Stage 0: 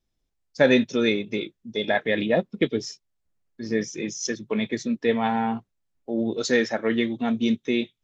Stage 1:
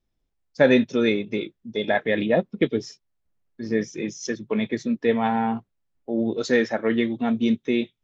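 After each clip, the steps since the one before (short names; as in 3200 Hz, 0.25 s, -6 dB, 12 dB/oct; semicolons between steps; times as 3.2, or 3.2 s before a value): high shelf 4200 Hz -10 dB; gain +1.5 dB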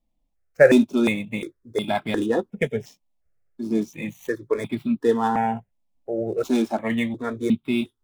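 median filter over 9 samples; step phaser 2.8 Hz 400–1800 Hz; gain +4.5 dB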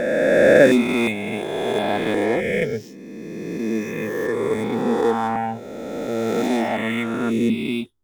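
spectral swells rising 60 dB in 2.72 s; gain -2.5 dB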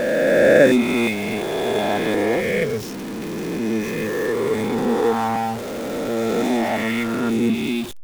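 zero-crossing step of -26 dBFS; gain -1 dB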